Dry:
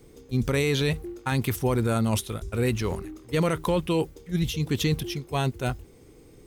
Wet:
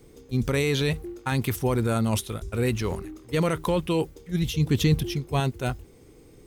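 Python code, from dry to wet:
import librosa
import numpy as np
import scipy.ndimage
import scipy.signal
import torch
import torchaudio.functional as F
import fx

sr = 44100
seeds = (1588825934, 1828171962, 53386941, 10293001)

y = fx.low_shelf(x, sr, hz=240.0, db=6.5, at=(4.57, 5.4))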